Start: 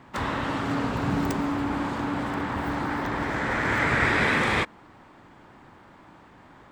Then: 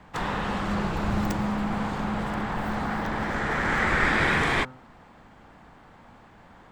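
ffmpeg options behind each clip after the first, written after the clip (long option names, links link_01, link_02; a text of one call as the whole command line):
ffmpeg -i in.wav -af "afreqshift=-76,bandreject=frequency=128.5:width_type=h:width=4,bandreject=frequency=257:width_type=h:width=4,bandreject=frequency=385.5:width_type=h:width=4,bandreject=frequency=514:width_type=h:width=4,bandreject=frequency=642.5:width_type=h:width=4,bandreject=frequency=771:width_type=h:width=4,bandreject=frequency=899.5:width_type=h:width=4,bandreject=frequency=1028:width_type=h:width=4,bandreject=frequency=1156.5:width_type=h:width=4,bandreject=frequency=1285:width_type=h:width=4,bandreject=frequency=1413.5:width_type=h:width=4,bandreject=frequency=1542:width_type=h:width=4" out.wav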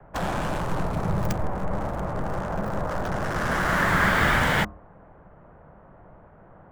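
ffmpeg -i in.wav -filter_complex "[0:a]acrossover=split=410|630|1900[link_01][link_02][link_03][link_04];[link_04]acrusher=bits=5:mix=0:aa=0.5[link_05];[link_01][link_02][link_03][link_05]amix=inputs=4:normalize=0,afreqshift=-210,volume=2dB" out.wav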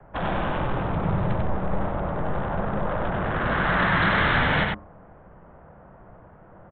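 ffmpeg -i in.wav -af "aresample=8000,volume=18.5dB,asoftclip=hard,volume=-18.5dB,aresample=44100,aecho=1:1:95:0.708" out.wav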